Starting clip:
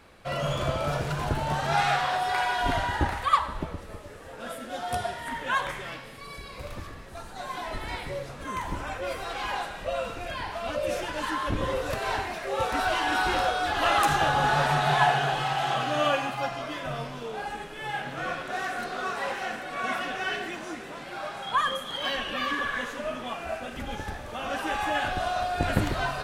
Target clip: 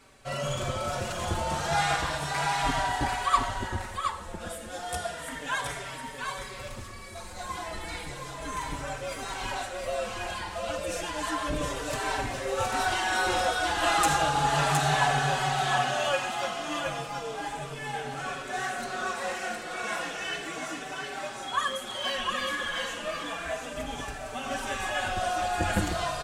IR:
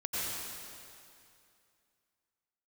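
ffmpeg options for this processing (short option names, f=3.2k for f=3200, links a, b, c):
-filter_complex "[0:a]equalizer=f=7.7k:t=o:w=1:g=10.5,asplit=2[a][b];[b]aecho=0:1:716:0.596[c];[a][c]amix=inputs=2:normalize=0,asplit=2[d][e];[e]adelay=4.7,afreqshift=-0.33[f];[d][f]amix=inputs=2:normalize=1"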